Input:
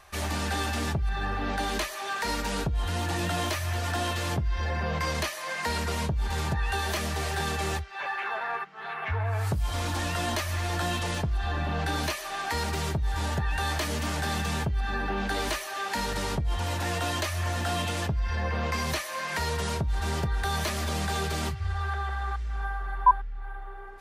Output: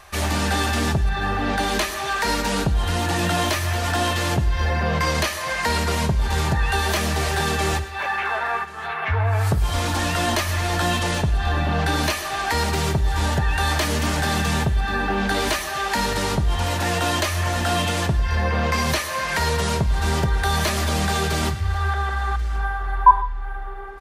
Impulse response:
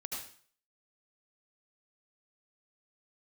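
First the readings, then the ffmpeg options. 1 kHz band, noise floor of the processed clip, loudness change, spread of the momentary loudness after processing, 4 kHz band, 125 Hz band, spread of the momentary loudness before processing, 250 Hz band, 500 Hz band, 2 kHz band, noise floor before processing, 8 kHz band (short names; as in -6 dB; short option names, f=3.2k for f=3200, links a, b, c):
+7.5 dB, -29 dBFS, +7.5 dB, 3 LU, +8.0 dB, +7.5 dB, 3 LU, +8.5 dB, +8.0 dB, +8.0 dB, -37 dBFS, +8.0 dB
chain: -filter_complex "[0:a]aecho=1:1:1087:0.0794,asplit=2[a][b];[1:a]atrim=start_sample=2205,asetrate=66150,aresample=44100,adelay=51[c];[b][c]afir=irnorm=-1:irlink=0,volume=-9.5dB[d];[a][d]amix=inputs=2:normalize=0,volume=7.5dB"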